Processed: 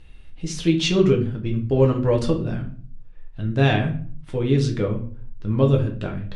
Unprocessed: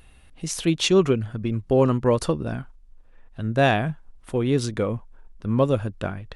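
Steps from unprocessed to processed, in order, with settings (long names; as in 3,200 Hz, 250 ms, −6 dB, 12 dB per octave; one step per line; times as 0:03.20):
low-pass filter 5,000 Hz 12 dB per octave
parametric band 910 Hz −7.5 dB 2.8 octaves
rectangular room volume 39 cubic metres, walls mixed, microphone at 0.52 metres
level +1.5 dB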